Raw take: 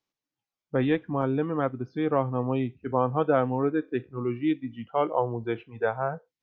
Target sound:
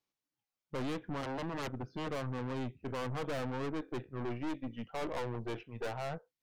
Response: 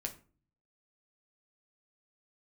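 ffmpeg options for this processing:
-filter_complex "[0:a]asettb=1/sr,asplit=3[a][b][c];[a]atrim=end=1.234[d];[b]atrim=start=1.23:end=2.07,asetpts=PTS-STARTPTS,afade=t=in:d=0.004:c=qsin,afade=t=out:st=0.836:d=0.004:c=qsin,aeval=exprs='0.0447*(abs(mod(val(0)/0.0447+3,4)-2)-1)':c=same[e];[c]atrim=start=2.066[f];[d][e]acrossfade=d=0.004:c1=hsin:c2=qsin[g];[g][f]acrossfade=d=0.004:c1=qsin:c2=hsin,aeval=exprs='(tanh(56.2*val(0)+0.65)-tanh(0.65))/56.2':c=same"

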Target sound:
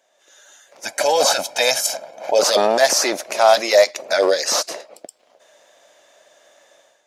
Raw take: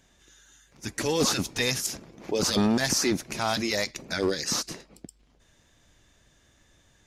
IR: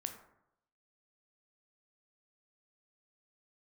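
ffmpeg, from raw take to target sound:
-filter_complex "[0:a]asettb=1/sr,asplit=3[a][b][c];[a]atrim=end=0.854[d];[b]atrim=start=0.85:end=2.39,asetpts=PTS-STARTPTS,afade=t=in:d=0.004:c=qsin,afade=t=out:st=1.536:d=0.004:c=qsin,aecho=1:1:1.3:0.67,atrim=end_sample=67914[e];[c]atrim=start=2.386[f];[d][e]acrossfade=d=0.004:c1=hsin:c2=qsin[g];[g][f]acrossfade=d=0.004:c1=qsin:c2=hsin,dynaudnorm=f=120:g=5:m=11.5dB,highpass=f=600:t=q:w=4.9,volume=-3dB"

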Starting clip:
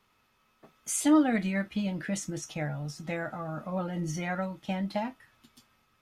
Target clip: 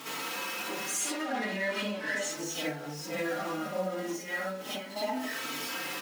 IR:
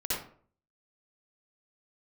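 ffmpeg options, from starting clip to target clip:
-filter_complex "[0:a]aeval=exprs='val(0)+0.5*0.0224*sgn(val(0))':c=same,acrusher=bits=5:mode=log:mix=0:aa=0.000001,asettb=1/sr,asplit=3[a][b][c];[a]atrim=end=0.944[d];[b]atrim=start=0.94:end=2.26,asetpts=PTS-STARTPTS,afade=t=in:d=0.004:c=qsin,afade=t=out:st=1.316:d=0.004:c=qsin,asplit=2[e][f];[f]highpass=f=720:p=1,volume=18dB,asoftclip=type=tanh:threshold=-11dB[g];[e][g]amix=inputs=2:normalize=0,lowpass=f=2.5k:p=1,volume=-6dB[h];[c]atrim=start=2.256[i];[d][h]acrossfade=d=0.004:c1=hsin:c2=qsin[j];[j][i]acrossfade=d=0.004:c1=qsin:c2=hsin,aeval=exprs='0.126*(abs(mod(val(0)/0.126+3,4)-2)-1)':c=same[k];[1:a]atrim=start_sample=2205[l];[k][l]afir=irnorm=-1:irlink=0,aeval=exprs='val(0)+0.0141*(sin(2*PI*50*n/s)+sin(2*PI*2*50*n/s)/2+sin(2*PI*3*50*n/s)/3+sin(2*PI*4*50*n/s)/4+sin(2*PI*5*50*n/s)/5)':c=same,acompressor=threshold=-27dB:ratio=6,highpass=f=240:w=0.5412,highpass=f=240:w=1.3066,asplit=2[m][n];[n]adelay=4,afreqshift=0.37[o];[m][o]amix=inputs=2:normalize=1,volume=1.5dB"

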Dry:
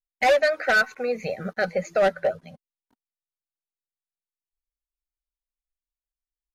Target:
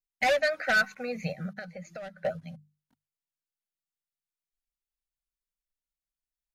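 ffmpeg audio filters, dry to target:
-filter_complex "[0:a]bandreject=f=50:t=h:w=6,bandreject=f=100:t=h:w=6,bandreject=f=150:t=h:w=6,bandreject=f=200:t=h:w=6,asettb=1/sr,asplit=3[a][b][c];[a]atrim=end=1.324[d];[b]atrim=start=1.32:end=2.25,asetpts=PTS-STARTPTS,afade=t=in:d=0.004:c=qsin,afade=t=out:st=0.926:d=0.004:c=qsin,acompressor=threshold=-33dB:ratio=10[e];[c]atrim=start=2.246[f];[d][e]acrossfade=d=0.004:c1=hsin:c2=qsin[g];[g][f]acrossfade=d=0.004:c1=qsin:c2=hsin,equalizer=f=160:t=o:w=0.67:g=9,equalizer=f=400:t=o:w=0.67:g=-12,equalizer=f=1k:t=o:w=0.67:g=-5,volume=-2.5dB"

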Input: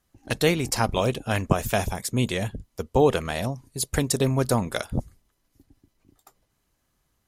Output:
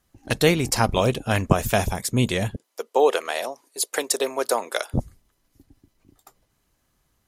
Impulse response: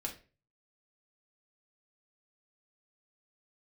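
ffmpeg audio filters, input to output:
-filter_complex "[0:a]asettb=1/sr,asplit=3[a][b][c];[a]atrim=end=2.564[d];[b]atrim=start=2.56:end=4.94,asetpts=PTS-STARTPTS,afade=t=in:d=0.004:c=qsin,afade=t=out:st=2.376:d=0.004:c=qsin,highpass=f=400:w=0.5412,highpass=f=400:w=1.3066[e];[c]atrim=start=4.936[f];[d][e]acrossfade=d=0.004:c1=hsin:c2=qsin[g];[g][f]acrossfade=d=0.004:c1=qsin:c2=hsin,volume=3dB"

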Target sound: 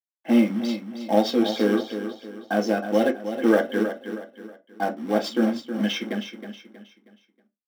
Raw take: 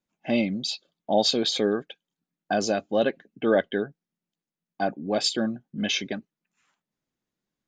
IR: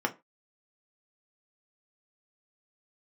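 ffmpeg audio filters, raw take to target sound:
-filter_complex "[0:a]aeval=exprs='sgn(val(0))*max(abs(val(0))-0.002,0)':c=same,lowshelf=f=170:t=q:w=1.5:g=-12.5,acrusher=bits=3:mode=log:mix=0:aa=0.000001,aecho=1:1:318|636|954|1272:0.335|0.127|0.0484|0.0184[a];[1:a]atrim=start_sample=2205[b];[a][b]afir=irnorm=-1:irlink=0,volume=-8dB"

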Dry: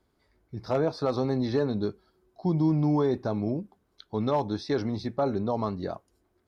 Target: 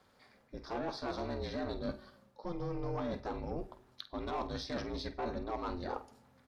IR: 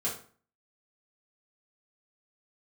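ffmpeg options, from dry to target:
-filter_complex "[0:a]asubboost=boost=6:cutoff=97,asplit=2[a][b];[b]highpass=f=720:p=1,volume=15dB,asoftclip=type=tanh:threshold=-15.5dB[c];[a][c]amix=inputs=2:normalize=0,lowpass=f=5k:p=1,volume=-6dB,areverse,acompressor=threshold=-37dB:ratio=6,areverse,aeval=exprs='val(0)*sin(2*PI*170*n/s)':c=same,bandreject=f=60:t=h:w=6,bandreject=f=120:t=h:w=6,asplit=2[d][e];[e]adelay=49,volume=-12.5dB[f];[d][f]amix=inputs=2:normalize=0,asplit=2[g][h];[1:a]atrim=start_sample=2205,asetrate=24255,aresample=44100[i];[h][i]afir=irnorm=-1:irlink=0,volume=-22.5dB[j];[g][j]amix=inputs=2:normalize=0,volume=2.5dB"

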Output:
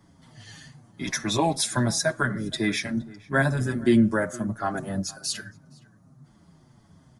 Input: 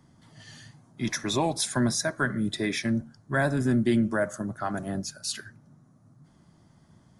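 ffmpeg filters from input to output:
-filter_complex "[0:a]asplit=2[a][b];[b]adelay=466.5,volume=-22dB,highshelf=f=4k:g=-10.5[c];[a][c]amix=inputs=2:normalize=0,asplit=2[d][e];[e]adelay=6.6,afreqshift=-2.2[f];[d][f]amix=inputs=2:normalize=1,volume=5.5dB"

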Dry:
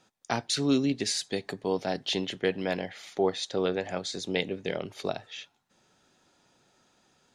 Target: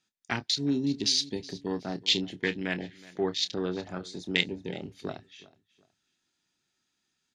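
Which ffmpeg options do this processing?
-filter_complex "[0:a]afwtdn=0.02,firequalizer=gain_entry='entry(340,0);entry(510,-10);entry(1800,6);entry(4600,10)':delay=0.05:min_phase=1,aecho=1:1:369|738:0.0944|0.0264,asettb=1/sr,asplit=3[a][b][c];[a]atrim=end=0.464[d];[b]atrim=start=0.46:end=1.04,asetpts=PTS-STARTPTS,afade=t=in:d=0.004:c=qsin,afade=t=out:st=0.576:d=0.004:c=qsin,acompressor=threshold=-25dB:ratio=2.5[e];[c]atrim=start=1.036[f];[d][e]acrossfade=d=0.004:c1=hsin:c2=qsin[g];[g][f]acrossfade=d=0.004:c1=qsin:c2=hsin,highshelf=f=5.1k:g=-5.5,asplit=2[h][i];[i]adelay=28,volume=-12.5dB[j];[h][j]amix=inputs=2:normalize=0"

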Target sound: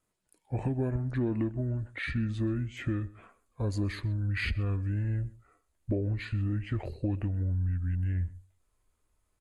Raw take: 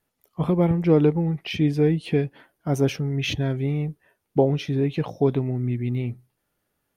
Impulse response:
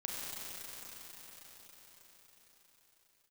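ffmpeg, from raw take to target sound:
-filter_complex "[0:a]asetrate=32667,aresample=44100,asubboost=boost=9.5:cutoff=55,acompressor=threshold=-22dB:ratio=6,asplit=2[a][b];[b]adelay=128.3,volume=-21dB,highshelf=f=4k:g=-2.89[c];[a][c]amix=inputs=2:normalize=0,volume=-4.5dB"

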